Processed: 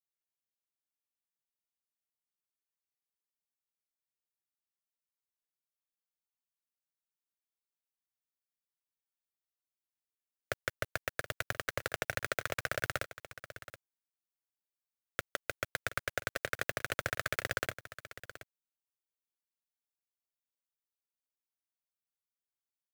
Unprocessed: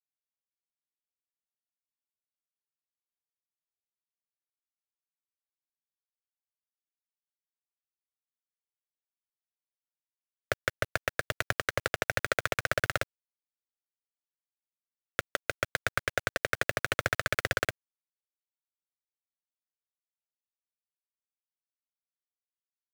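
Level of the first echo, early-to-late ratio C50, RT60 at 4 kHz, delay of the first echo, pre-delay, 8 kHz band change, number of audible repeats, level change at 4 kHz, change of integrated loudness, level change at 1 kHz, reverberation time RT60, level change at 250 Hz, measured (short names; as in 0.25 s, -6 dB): -14.0 dB, none, none, 0.725 s, none, -3.5 dB, 1, -5.0 dB, -5.5 dB, -5.5 dB, none, -6.0 dB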